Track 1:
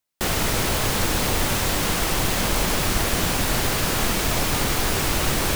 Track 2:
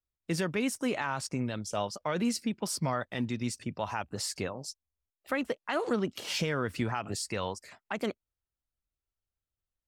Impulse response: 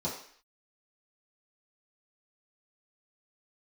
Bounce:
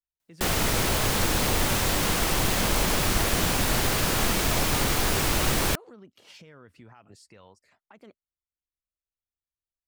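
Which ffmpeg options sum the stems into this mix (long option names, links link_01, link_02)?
-filter_complex "[0:a]adelay=200,volume=-2dB[link_01];[1:a]highshelf=frequency=3800:gain=-6,alimiter=level_in=5dB:limit=-24dB:level=0:latency=1:release=316,volume=-5dB,volume=-10.5dB[link_02];[link_01][link_02]amix=inputs=2:normalize=0"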